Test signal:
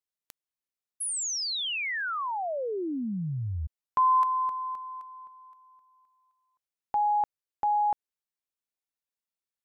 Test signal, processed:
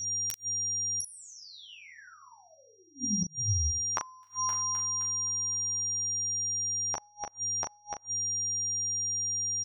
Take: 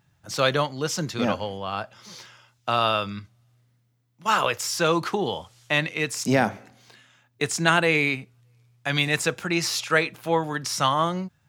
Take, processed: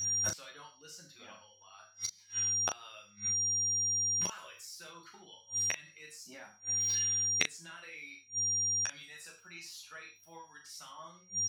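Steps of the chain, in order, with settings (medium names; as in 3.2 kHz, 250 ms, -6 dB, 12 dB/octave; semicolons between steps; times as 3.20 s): reverb removal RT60 1.7 s; tilt shelf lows -7.5 dB; peak limiter -13 dBFS; whistle 5.7 kHz -40 dBFS; gated-style reverb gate 150 ms falling, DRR 1.5 dB; mains buzz 100 Hz, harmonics 11, -61 dBFS -9 dB/octave; inverted gate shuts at -26 dBFS, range -34 dB; on a send: early reflections 11 ms -3.5 dB, 39 ms -6 dB; on the sum: trim +5 dB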